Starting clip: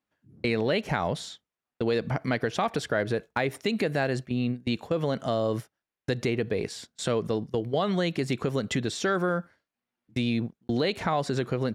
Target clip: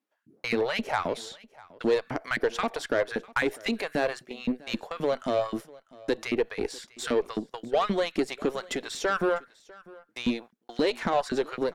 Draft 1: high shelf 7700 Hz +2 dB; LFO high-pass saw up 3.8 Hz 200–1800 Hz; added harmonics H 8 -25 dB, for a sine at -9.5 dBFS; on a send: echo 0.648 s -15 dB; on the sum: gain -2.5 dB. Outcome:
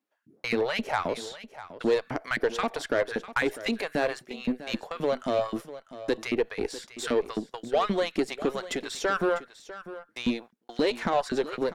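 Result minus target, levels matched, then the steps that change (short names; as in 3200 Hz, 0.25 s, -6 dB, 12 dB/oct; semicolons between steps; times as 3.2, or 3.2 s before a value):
echo-to-direct +7.5 dB
change: echo 0.648 s -22.5 dB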